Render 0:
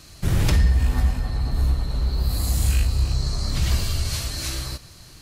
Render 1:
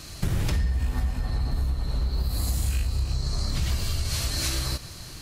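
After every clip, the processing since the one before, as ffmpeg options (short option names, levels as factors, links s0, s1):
-af "acompressor=threshold=0.0398:ratio=6,volume=1.78"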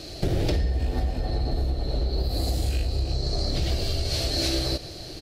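-af "firequalizer=gain_entry='entry(220,0);entry(320,11);entry(710,10);entry(1000,-7);entry(1500,-3);entry(4400,5);entry(6700,-5);entry(10000,-7)':delay=0.05:min_phase=1"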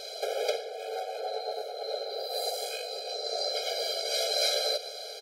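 -af "afftfilt=real='re*eq(mod(floor(b*sr/1024/420),2),1)':imag='im*eq(mod(floor(b*sr/1024/420),2),1)':win_size=1024:overlap=0.75,volume=1.5"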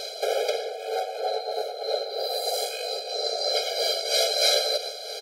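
-af "tremolo=f=3.1:d=0.45,volume=2.37"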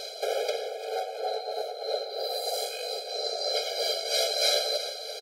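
-af "aecho=1:1:348:0.224,volume=0.668"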